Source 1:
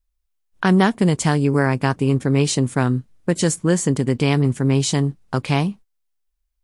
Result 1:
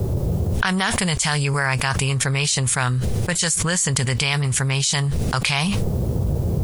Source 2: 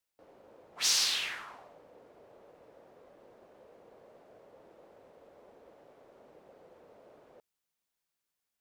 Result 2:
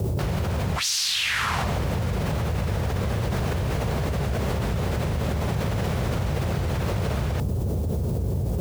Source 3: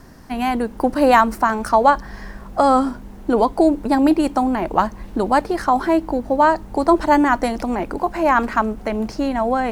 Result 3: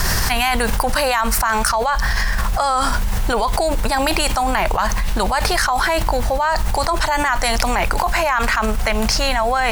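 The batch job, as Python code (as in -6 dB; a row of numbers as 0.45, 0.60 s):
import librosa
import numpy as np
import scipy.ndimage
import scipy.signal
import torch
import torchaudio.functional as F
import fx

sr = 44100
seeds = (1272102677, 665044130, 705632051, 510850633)

y = fx.dmg_noise_band(x, sr, seeds[0], low_hz=61.0, high_hz=390.0, level_db=-46.0)
y = fx.tone_stack(y, sr, knobs='10-0-10')
y = fx.env_flatten(y, sr, amount_pct=100)
y = F.gain(torch.from_numpy(y), 2.0).numpy()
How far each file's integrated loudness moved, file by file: -1.0, +3.0, 0.0 LU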